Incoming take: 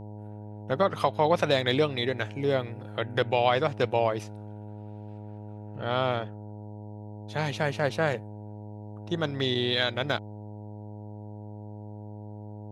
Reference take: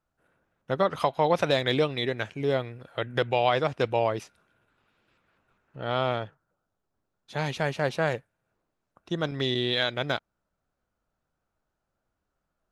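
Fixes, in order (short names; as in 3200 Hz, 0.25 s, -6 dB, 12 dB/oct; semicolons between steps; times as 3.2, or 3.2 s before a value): de-hum 105 Hz, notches 9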